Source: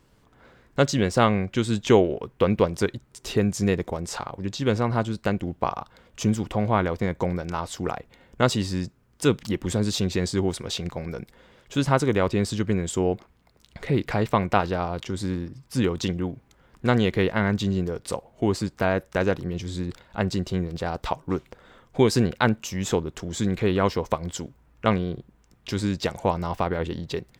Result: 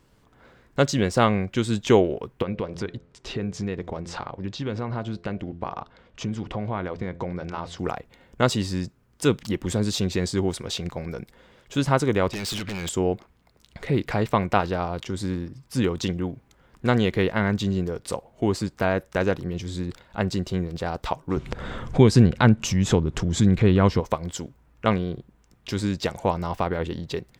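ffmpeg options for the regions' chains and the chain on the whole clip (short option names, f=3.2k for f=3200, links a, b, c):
-filter_complex "[0:a]asettb=1/sr,asplit=3[a][b][c];[a]atrim=end=2.424[d];[b]atrim=start=2.42:end=7.79,asetpts=PTS-STARTPTS,afade=t=in:d=0.004:c=qsin,afade=t=out:st=5.366:d=0.004:c=qsin,lowpass=4.5k,acompressor=threshold=-25dB:ratio=3:attack=3.2:release=140:knee=1:detection=peak,bandreject=f=85.79:t=h:w=4,bandreject=f=171.58:t=h:w=4,bandreject=f=257.37:t=h:w=4,bandreject=f=343.16:t=h:w=4,bandreject=f=428.95:t=h:w=4,bandreject=f=514.74:t=h:w=4,bandreject=f=600.53:t=h:w=4,bandreject=f=686.32:t=h:w=4[e];[c]atrim=start=7.786[f];[d][e]acrossfade=d=0.004:c1=hsin:c2=qsin[g];[g][f]acrossfade=d=0.004:c1=qsin:c2=hsin,asettb=1/sr,asplit=3[h][i][j];[h]atrim=end=12.334[k];[i]atrim=start=12.33:end=12.89,asetpts=PTS-STARTPTS,afade=t=in:d=0.004:c=qsin,afade=t=out:st=0.556:d=0.004:c=qsin,equalizer=f=2.8k:t=o:w=2.3:g=14.5,acompressor=threshold=-23dB:ratio=5:attack=3.2:release=140:knee=1:detection=peak,aeval=exprs='0.0631*(abs(mod(val(0)/0.0631+3,4)-2)-1)':c=same[l];[j]atrim=start=12.886[m];[k][l]acrossfade=d=0.004:c1=hsin:c2=qsin[n];[n][m]acrossfade=d=0.004:c1=qsin:c2=hsin,asettb=1/sr,asplit=3[o][p][q];[o]atrim=end=21.374[r];[p]atrim=start=21.37:end=24,asetpts=PTS-STARTPTS,afade=t=in:d=0.004:c=qsin,afade=t=out:st=2.626:d=0.004:c=qsin,lowpass=10k,bass=f=250:g=9,treble=f=4k:g=-2,acompressor=mode=upward:threshold=-17dB:ratio=2.5:attack=3.2:release=140:knee=2.83:detection=peak[s];[q]atrim=start=23.996[t];[r][s]acrossfade=d=0.004:c1=hsin:c2=qsin[u];[u][t]acrossfade=d=0.004:c1=qsin:c2=hsin"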